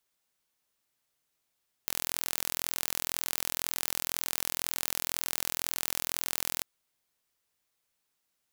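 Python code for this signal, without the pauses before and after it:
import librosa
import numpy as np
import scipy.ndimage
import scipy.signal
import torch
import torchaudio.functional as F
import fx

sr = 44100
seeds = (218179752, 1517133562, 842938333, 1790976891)

y = 10.0 ** (-4.0 / 20.0) * (np.mod(np.arange(round(4.75 * sr)), round(sr / 42.0)) == 0)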